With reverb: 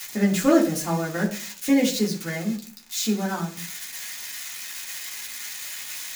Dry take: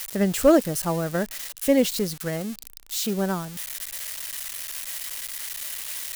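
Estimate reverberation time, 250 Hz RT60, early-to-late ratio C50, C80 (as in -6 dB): 0.45 s, 0.55 s, 11.5 dB, 16.0 dB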